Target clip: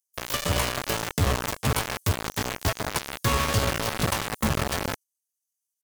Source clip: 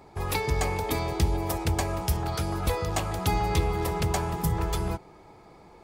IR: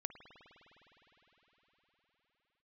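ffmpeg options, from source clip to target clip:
-filter_complex "[0:a]agate=range=-6dB:threshold=-40dB:ratio=16:detection=peak,acrossover=split=5900[a][b];[a]acrusher=bits=3:mix=0:aa=0.000001[c];[c][b]amix=inputs=2:normalize=0,asetrate=58866,aresample=44100,atempo=0.749154"

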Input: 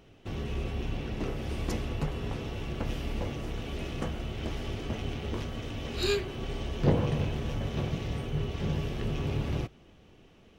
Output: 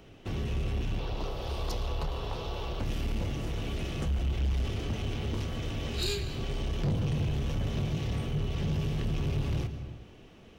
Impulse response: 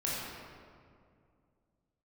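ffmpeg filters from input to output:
-filter_complex "[0:a]asettb=1/sr,asplit=3[a][b][c];[a]atrim=end=4.024[d];[b]atrim=start=4.02:end=4.65,asetpts=PTS-STARTPTS,afade=t=in:d=0.004:c=qsin,afade=t=out:st=0.626:d=0.004:c=qsin,equalizer=f=65:t=o:w=0.28:g=14[e];[c]atrim=start=4.646[f];[d][e]acrossfade=d=0.004:c1=hsin:c2=qsin[g];[g][f]acrossfade=d=0.004:c1=qsin:c2=hsin,acrossover=split=200|3000[h][i][j];[i]acompressor=threshold=-42dB:ratio=3[k];[h][k][j]amix=inputs=3:normalize=0,asettb=1/sr,asplit=3[l][m][n];[l]atrim=end=0.994[o];[m]atrim=start=0.99:end=2.8,asetpts=PTS-STARTPTS,afade=t=in:d=0.004:c=qsin,afade=t=out:st=1.806:d=0.004:c=qsin,equalizer=f=125:t=o:w=1:g=-7,equalizer=f=250:t=o:w=1:g=-10,equalizer=f=500:t=o:w=1:g=4,equalizer=f=1k:t=o:w=1:g=8,equalizer=f=2k:t=o:w=1:g=-8,equalizer=f=4k:t=o:w=1:g=7,equalizer=f=8k:t=o:w=1:g=-8[p];[n]atrim=start=2.796[q];[o][p]acrossfade=d=0.004:c1=hsin:c2=qsin[r];[r][q]acrossfade=d=0.004:c1=qsin:c2=hsin,asplit=2[s][t];[1:a]atrim=start_sample=2205,afade=t=out:st=0.34:d=0.01,atrim=end_sample=15435,adelay=111[u];[t][u]afir=irnorm=-1:irlink=0,volume=-18dB[v];[s][v]amix=inputs=2:normalize=0,asoftclip=type=tanh:threshold=-28dB,volume=4dB"

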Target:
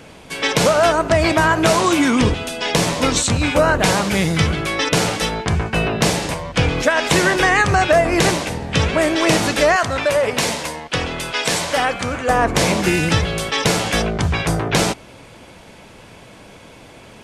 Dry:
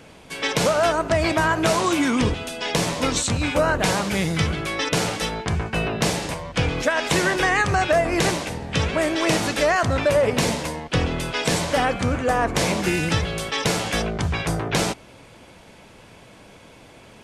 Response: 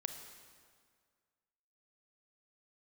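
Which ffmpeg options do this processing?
-filter_complex "[0:a]asettb=1/sr,asplit=3[a][b][c];[a]atrim=end=9.764[d];[b]atrim=start=9.76:end=12.29,asetpts=PTS-STARTPTS,afade=t=in:d=0.004:c=qsin,afade=t=out:st=2.526:d=0.004:c=qsin,lowshelf=f=440:g=-10[e];[c]atrim=start=12.286[f];[d][e]acrossfade=d=0.004:c1=hsin:c2=qsin[g];[g][f]acrossfade=d=0.004:c1=qsin:c2=hsin,volume=5dB"

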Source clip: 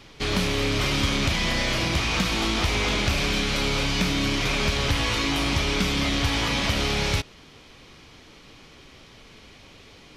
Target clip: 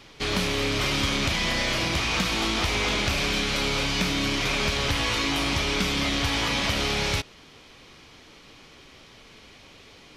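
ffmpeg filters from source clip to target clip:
-af "lowshelf=f=240:g=-4.5"

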